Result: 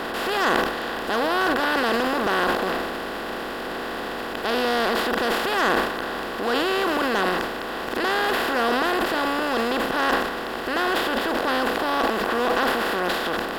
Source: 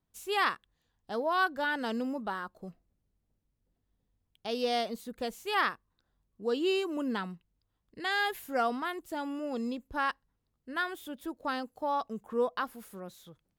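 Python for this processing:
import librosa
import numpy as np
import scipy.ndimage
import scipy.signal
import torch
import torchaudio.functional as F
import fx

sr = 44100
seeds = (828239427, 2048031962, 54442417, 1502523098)

y = fx.bin_compress(x, sr, power=0.2)
y = np.clip(y, -10.0 ** (-13.0 / 20.0), 10.0 ** (-13.0 / 20.0))
y = fx.transient(y, sr, attack_db=-3, sustain_db=10)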